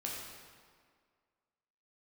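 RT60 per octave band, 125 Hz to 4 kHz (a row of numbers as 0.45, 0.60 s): 1.6, 1.9, 1.9, 1.9, 1.6, 1.4 s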